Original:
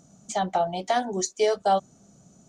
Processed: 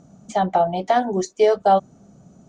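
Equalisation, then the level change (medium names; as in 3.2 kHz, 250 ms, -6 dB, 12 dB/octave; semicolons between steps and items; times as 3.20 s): low-pass 1.5 kHz 6 dB/octave; +7.0 dB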